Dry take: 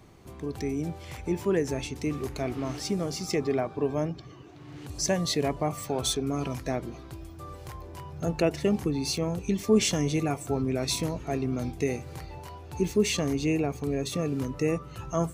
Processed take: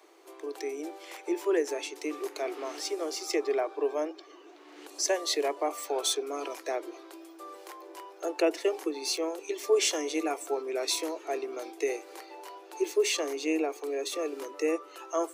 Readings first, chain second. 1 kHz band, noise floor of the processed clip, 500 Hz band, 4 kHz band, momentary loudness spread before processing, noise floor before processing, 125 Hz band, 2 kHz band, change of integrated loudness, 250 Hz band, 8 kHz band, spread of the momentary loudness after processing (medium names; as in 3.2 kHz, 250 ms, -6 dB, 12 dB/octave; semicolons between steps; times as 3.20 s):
0.0 dB, -52 dBFS, 0.0 dB, 0.0 dB, 16 LU, -45 dBFS, under -40 dB, 0.0 dB, -2.0 dB, -7.0 dB, 0.0 dB, 18 LU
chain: steep high-pass 310 Hz 96 dB/octave